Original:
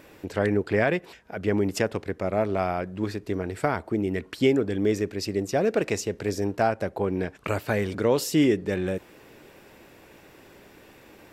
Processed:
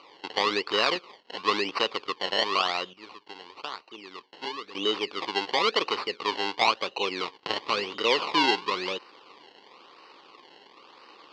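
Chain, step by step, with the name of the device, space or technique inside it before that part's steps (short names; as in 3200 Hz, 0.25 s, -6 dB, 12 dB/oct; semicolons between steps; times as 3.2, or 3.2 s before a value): 2.93–4.75 pre-emphasis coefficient 0.8; circuit-bent sampling toy (decimation with a swept rate 25×, swing 100% 0.97 Hz; speaker cabinet 550–4700 Hz, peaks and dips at 640 Hz -10 dB, 1100 Hz +8 dB, 1600 Hz -7 dB, 2900 Hz +7 dB, 4500 Hz +8 dB); gain +2.5 dB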